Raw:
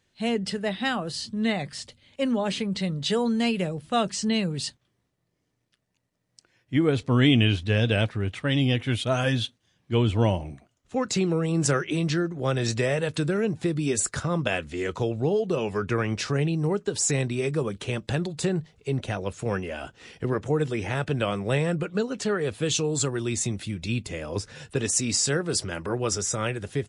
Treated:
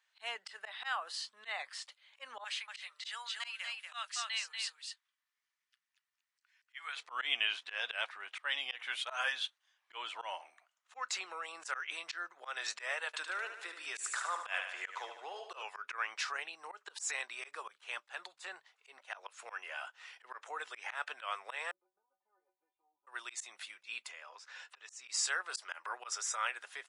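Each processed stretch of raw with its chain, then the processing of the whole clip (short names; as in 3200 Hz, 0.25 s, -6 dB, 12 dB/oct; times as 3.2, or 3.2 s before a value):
2.44–6.97 HPF 1500 Hz + echo 0.237 s -5 dB
13.06–15.63 HPF 240 Hz 24 dB/oct + feedback echo 74 ms, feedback 59%, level -8.5 dB
21.71–23.07 vocal tract filter u + low shelf 410 Hz -6.5 dB + metallic resonator 180 Hz, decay 0.22 s, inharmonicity 0.008
24.11–25.08 LPF 7800 Hz 24 dB/oct + compressor 3:1, threshold -38 dBFS
whole clip: HPF 990 Hz 24 dB/oct; high shelf 2500 Hz -11 dB; auto swell 0.112 s; gain +1 dB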